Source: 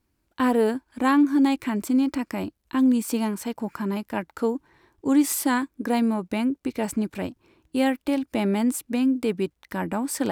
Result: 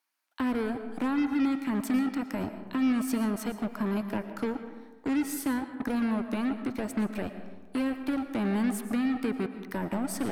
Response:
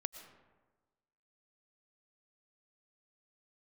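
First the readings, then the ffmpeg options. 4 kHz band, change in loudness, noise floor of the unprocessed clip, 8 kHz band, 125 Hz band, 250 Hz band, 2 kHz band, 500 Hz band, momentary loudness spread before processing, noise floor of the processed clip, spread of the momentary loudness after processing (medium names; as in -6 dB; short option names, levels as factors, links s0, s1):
-7.5 dB, -6.0 dB, -74 dBFS, -9.0 dB, -3.0 dB, -5.5 dB, -5.0 dB, -8.0 dB, 10 LU, -50 dBFS, 7 LU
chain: -filter_complex "[0:a]bandreject=f=7500:w=14,acrossover=split=230[s0][s1];[s1]acompressor=threshold=0.0251:ratio=6[s2];[s0][s2]amix=inputs=2:normalize=0,aeval=exprs='val(0)+0.00158*(sin(2*PI*60*n/s)+sin(2*PI*2*60*n/s)/2+sin(2*PI*3*60*n/s)/3+sin(2*PI*4*60*n/s)/4+sin(2*PI*5*60*n/s)/5)':c=same,acrossover=split=720|2200[s3][s4][s5];[s3]acrusher=bits=4:mix=0:aa=0.5[s6];[s6][s4][s5]amix=inputs=3:normalize=0[s7];[1:a]atrim=start_sample=2205[s8];[s7][s8]afir=irnorm=-1:irlink=0"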